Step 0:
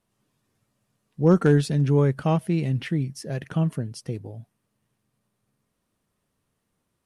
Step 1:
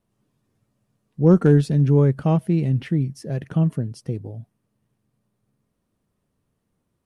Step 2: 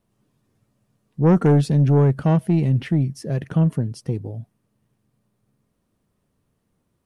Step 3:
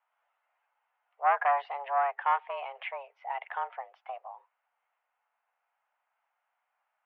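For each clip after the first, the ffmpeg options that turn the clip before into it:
ffmpeg -i in.wav -af "tiltshelf=frequency=730:gain=4.5" out.wav
ffmpeg -i in.wav -af "asoftclip=type=tanh:threshold=-12.5dB,volume=3dB" out.wav
ffmpeg -i in.wav -af "highpass=frequency=510:width_type=q:width=0.5412,highpass=frequency=510:width_type=q:width=1.307,lowpass=frequency=2500:width_type=q:width=0.5176,lowpass=frequency=2500:width_type=q:width=0.7071,lowpass=frequency=2500:width_type=q:width=1.932,afreqshift=280" out.wav

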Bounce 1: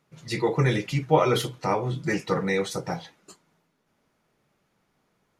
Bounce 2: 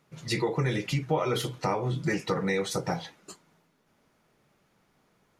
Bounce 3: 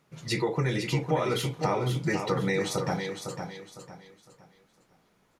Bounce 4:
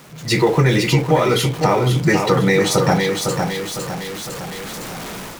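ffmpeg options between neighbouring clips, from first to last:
ffmpeg -i in.wav -af "acompressor=threshold=-28dB:ratio=4,volume=3dB" out.wav
ffmpeg -i in.wav -af "aecho=1:1:506|1012|1518|2024:0.447|0.143|0.0457|0.0146" out.wav
ffmpeg -i in.wav -af "aeval=exprs='val(0)+0.5*0.0119*sgn(val(0))':channel_layout=same,dynaudnorm=framelen=110:gausssize=5:maxgain=14dB" out.wav

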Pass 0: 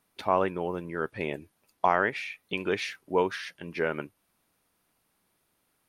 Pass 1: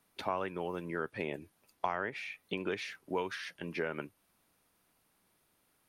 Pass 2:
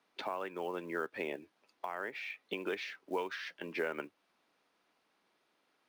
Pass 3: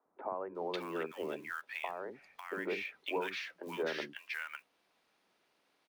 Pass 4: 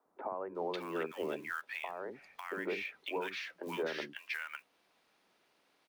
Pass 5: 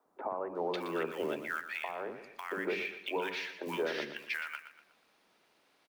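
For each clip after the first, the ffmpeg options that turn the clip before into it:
ffmpeg -i in.wav -filter_complex "[0:a]acrossover=split=140|1400[link_01][link_02][link_03];[link_01]acompressor=threshold=-56dB:ratio=4[link_04];[link_02]acompressor=threshold=-34dB:ratio=4[link_05];[link_03]acompressor=threshold=-41dB:ratio=4[link_06];[link_04][link_05][link_06]amix=inputs=3:normalize=0" out.wav
ffmpeg -i in.wav -filter_complex "[0:a]acrossover=split=230 5900:gain=0.0891 1 0.0708[link_01][link_02][link_03];[link_01][link_02][link_03]amix=inputs=3:normalize=0,alimiter=level_in=1dB:limit=-24dB:level=0:latency=1:release=470,volume=-1dB,acrusher=bits=7:mode=log:mix=0:aa=0.000001,volume=1dB" out.wav
ffmpeg -i in.wav -filter_complex "[0:a]acrossover=split=290|1200[link_01][link_02][link_03];[link_01]adelay=50[link_04];[link_03]adelay=550[link_05];[link_04][link_02][link_05]amix=inputs=3:normalize=0,volume=2dB" out.wav
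ffmpeg -i in.wav -af "alimiter=level_in=5dB:limit=-24dB:level=0:latency=1:release=353,volume=-5dB,volume=2.5dB" out.wav
ffmpeg -i in.wav -af "aecho=1:1:120|240|360|480:0.282|0.11|0.0429|0.0167,volume=2.5dB" out.wav

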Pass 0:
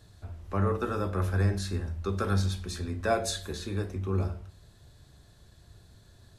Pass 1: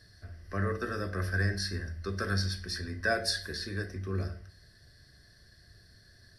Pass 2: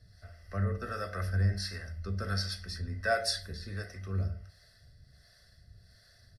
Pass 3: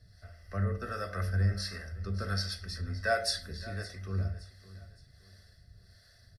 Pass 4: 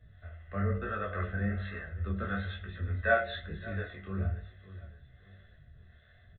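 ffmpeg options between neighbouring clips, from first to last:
ffmpeg -i in.wav -af "superequalizer=9b=0.282:11b=3.98:14b=3.98:15b=0.562:16b=1.58,volume=-4.5dB" out.wav
ffmpeg -i in.wav -filter_complex "[0:a]acrossover=split=430[link_01][link_02];[link_01]aeval=exprs='val(0)*(1-0.7/2+0.7/2*cos(2*PI*1.4*n/s))':channel_layout=same[link_03];[link_02]aeval=exprs='val(0)*(1-0.7/2-0.7/2*cos(2*PI*1.4*n/s))':channel_layout=same[link_04];[link_03][link_04]amix=inputs=2:normalize=0,aecho=1:1:1.5:0.62" out.wav
ffmpeg -i in.wav -af "aecho=1:1:567|1134|1701:0.133|0.0493|0.0183" out.wav
ffmpeg -i in.wav -filter_complex "[0:a]flanger=delay=19:depth=7.3:speed=1.1,asplit=2[link_01][link_02];[link_02]adelay=14,volume=-6.5dB[link_03];[link_01][link_03]amix=inputs=2:normalize=0,aresample=8000,aresample=44100,volume=4.5dB" out.wav

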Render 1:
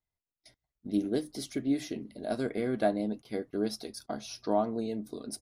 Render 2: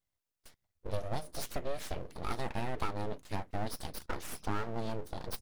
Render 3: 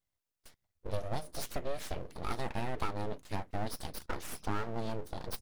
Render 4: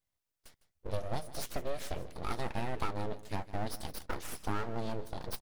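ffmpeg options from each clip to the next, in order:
ffmpeg -i in.wav -af "asubboost=boost=4:cutoff=110,aeval=exprs='abs(val(0))':channel_layout=same,acompressor=threshold=-32dB:ratio=6,volume=3.5dB" out.wav
ffmpeg -i in.wav -af anull out.wav
ffmpeg -i in.wav -af "aecho=1:1:156:0.141" out.wav

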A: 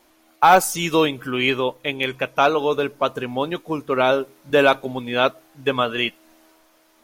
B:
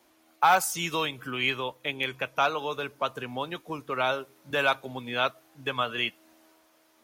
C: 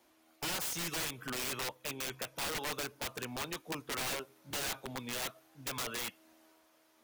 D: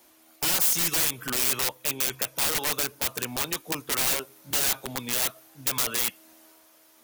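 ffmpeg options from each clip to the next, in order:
ffmpeg -i in.wav -filter_complex "[0:a]highpass=58,acrossover=split=140|700|2300[link_01][link_02][link_03][link_04];[link_02]acompressor=threshold=-31dB:ratio=6[link_05];[link_01][link_05][link_03][link_04]amix=inputs=4:normalize=0,volume=-5.5dB" out.wav
ffmpeg -i in.wav -af "alimiter=limit=-19dB:level=0:latency=1:release=18,aeval=exprs='(mod(21.1*val(0)+1,2)-1)/21.1':channel_layout=same,volume=-4.5dB" out.wav
ffmpeg -i in.wav -af "crystalizer=i=1.5:c=0,volume=6.5dB" out.wav

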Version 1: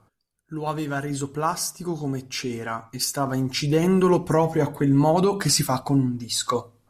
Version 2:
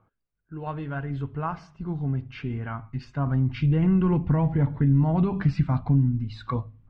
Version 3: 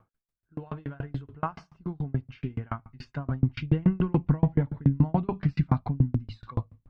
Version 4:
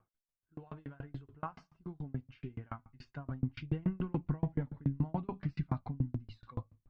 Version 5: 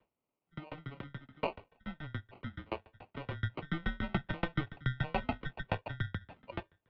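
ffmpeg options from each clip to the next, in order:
ffmpeg -i in.wav -af "lowpass=frequency=2800:width=0.5412,lowpass=frequency=2800:width=1.3066,asubboost=boost=10:cutoff=150,acompressor=threshold=-14dB:ratio=2,volume=-5.5dB" out.wav
ffmpeg -i in.wav -af "aeval=exprs='val(0)*pow(10,-34*if(lt(mod(7*n/s,1),2*abs(7)/1000),1-mod(7*n/s,1)/(2*abs(7)/1000),(mod(7*n/s,1)-2*abs(7)/1000)/(1-2*abs(7)/1000))/20)':channel_layout=same,volume=5.5dB" out.wav
ffmpeg -i in.wav -af "flanger=delay=2.5:depth=1.6:regen=78:speed=1.6:shape=triangular,volume=-5.5dB" out.wav
ffmpeg -i in.wav -af "adynamicequalizer=threshold=0.00112:dfrequency=2000:dqfactor=1.2:tfrequency=2000:tqfactor=1.2:attack=5:release=100:ratio=0.375:range=2:mode=boostabove:tftype=bell,acrusher=samples=24:mix=1:aa=0.000001,highpass=frequency=240:width_type=q:width=0.5412,highpass=frequency=240:width_type=q:width=1.307,lowpass=frequency=3500:width_type=q:width=0.5176,lowpass=frequency=3500:width_type=q:width=0.7071,lowpass=frequency=3500:width_type=q:width=1.932,afreqshift=-150,volume=6.5dB" out.wav

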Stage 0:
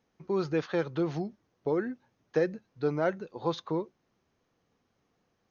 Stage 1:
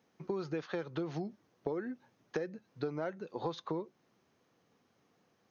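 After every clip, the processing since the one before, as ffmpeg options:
ffmpeg -i in.wav -af "highpass=120,acompressor=threshold=-36dB:ratio=12,volume=3dB" out.wav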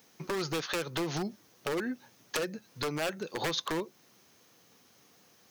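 ffmpeg -i in.wav -af "aeval=exprs='0.0224*(abs(mod(val(0)/0.0224+3,4)-2)-1)':channel_layout=same,crystalizer=i=5:c=0,volume=5.5dB" out.wav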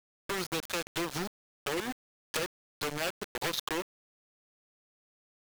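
ffmpeg -i in.wav -af "aeval=exprs='val(0)*gte(abs(val(0)),0.0282)':channel_layout=same" out.wav

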